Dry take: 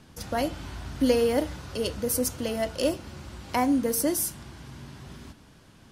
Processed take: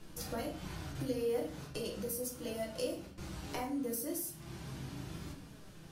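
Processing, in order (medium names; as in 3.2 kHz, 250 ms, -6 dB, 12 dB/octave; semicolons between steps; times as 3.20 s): 0.92–3.18 s: gate with hold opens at -30 dBFS; treble shelf 11 kHz +10 dB; compression 6:1, threshold -35 dBFS, peak gain reduction 17 dB; flange 0.39 Hz, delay 2.8 ms, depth 5.7 ms, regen +66%; simulated room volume 43 m³, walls mixed, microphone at 0.75 m; trim -1.5 dB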